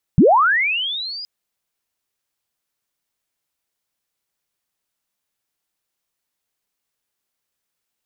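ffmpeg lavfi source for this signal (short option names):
-f lavfi -i "aevalsrc='pow(10,(-6.5-22*t/1.07)/20)*sin(2*PI*(120*t+4880*t*t/(2*1.07)))':d=1.07:s=44100"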